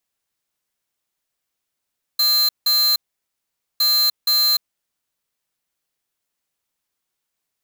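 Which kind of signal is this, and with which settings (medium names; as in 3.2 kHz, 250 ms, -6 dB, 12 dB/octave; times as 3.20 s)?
beep pattern square 4.12 kHz, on 0.30 s, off 0.17 s, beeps 2, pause 0.84 s, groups 2, -16.5 dBFS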